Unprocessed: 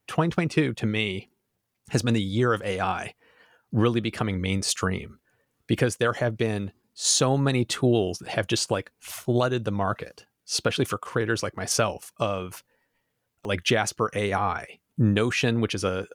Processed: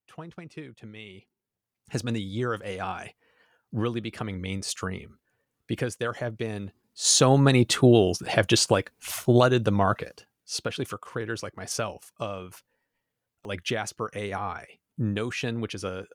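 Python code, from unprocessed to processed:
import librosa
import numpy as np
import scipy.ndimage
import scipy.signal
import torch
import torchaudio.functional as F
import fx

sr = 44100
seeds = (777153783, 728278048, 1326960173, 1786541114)

y = fx.gain(x, sr, db=fx.line((0.96, -18.0), (1.94, -6.0), (6.52, -6.0), (7.33, 4.0), (9.78, 4.0), (10.7, -6.5)))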